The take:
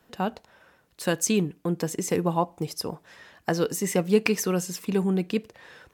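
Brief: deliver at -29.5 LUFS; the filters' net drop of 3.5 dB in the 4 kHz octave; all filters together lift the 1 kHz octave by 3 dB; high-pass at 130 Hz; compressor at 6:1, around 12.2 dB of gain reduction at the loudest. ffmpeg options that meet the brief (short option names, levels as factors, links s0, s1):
-af "highpass=130,equalizer=f=1000:t=o:g=4,equalizer=f=4000:t=o:g=-5.5,acompressor=threshold=0.0398:ratio=6,volume=1.68"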